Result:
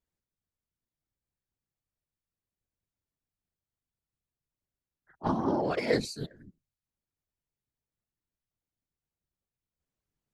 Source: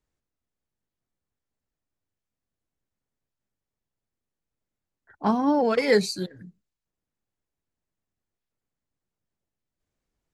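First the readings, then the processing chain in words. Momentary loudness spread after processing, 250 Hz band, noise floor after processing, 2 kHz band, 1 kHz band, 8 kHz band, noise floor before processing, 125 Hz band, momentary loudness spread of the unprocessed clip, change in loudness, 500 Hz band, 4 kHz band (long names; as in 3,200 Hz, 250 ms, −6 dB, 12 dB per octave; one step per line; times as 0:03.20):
12 LU, −7.5 dB, below −85 dBFS, −7.5 dB, −6.5 dB, −7.5 dB, below −85 dBFS, 0.0 dB, 12 LU, −7.0 dB, −7.5 dB, −7.5 dB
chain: random phases in short frames
highs frequency-modulated by the lows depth 0.11 ms
level −7 dB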